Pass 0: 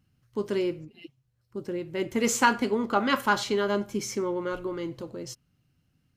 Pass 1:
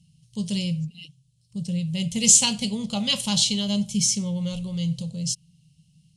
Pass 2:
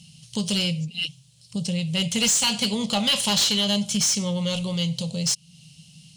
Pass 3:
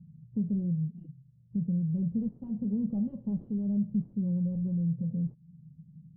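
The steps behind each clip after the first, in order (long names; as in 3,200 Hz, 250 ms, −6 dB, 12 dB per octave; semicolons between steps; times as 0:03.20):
drawn EQ curve 110 Hz 0 dB, 170 Hz +15 dB, 340 Hz −27 dB, 510 Hz −9 dB, 760 Hz −11 dB, 1,500 Hz −27 dB, 3,000 Hz +8 dB, 6,200 Hz +10 dB, 9,700 Hz +15 dB, 14,000 Hz −17 dB; level +4 dB
downward compressor 2 to 1, threshold −39 dBFS, peak gain reduction 15.5 dB; mid-hump overdrive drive 21 dB, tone 6,000 Hz, clips at −16 dBFS; level +5 dB
in parallel at −7.5 dB: soft clipping −30 dBFS, distortion −7 dB; on the sum: transistor ladder low-pass 360 Hz, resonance 20%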